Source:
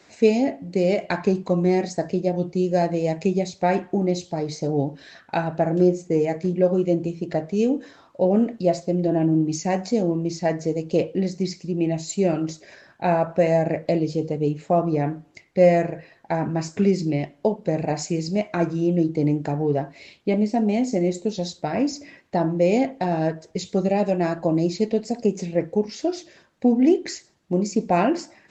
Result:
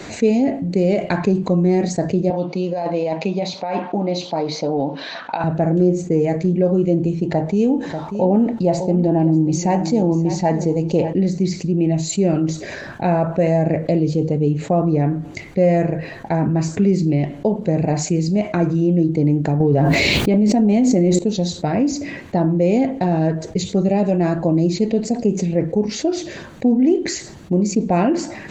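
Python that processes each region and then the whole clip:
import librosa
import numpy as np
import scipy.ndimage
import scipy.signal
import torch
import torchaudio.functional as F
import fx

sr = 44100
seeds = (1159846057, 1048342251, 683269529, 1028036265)

y = fx.chain(x, sr, fx.cabinet(low_hz=370.0, low_slope=12, high_hz=4900.0, hz=(380.0, 970.0, 1800.0), db=(-10, 7, -6)),
    fx.over_compress(threshold_db=-27.0, ratio=-1.0), at=(2.3, 5.44))
y = fx.chain(y, sr, fx.peak_eq(hz=870.0, db=15.0, octaves=0.23),
    fx.echo_single(ms=590, db=-16.0), at=(7.26, 11.13))
y = fx.chain(y, sr, fx.quant_dither(seeds[0], bits=12, dither='none'),
    fx.env_flatten(amount_pct=100), at=(19.6, 21.19))
y = fx.low_shelf(y, sr, hz=360.0, db=9.5)
y = fx.notch(y, sr, hz=5200.0, q=9.4)
y = fx.env_flatten(y, sr, amount_pct=50)
y = y * librosa.db_to_amplitude(-4.5)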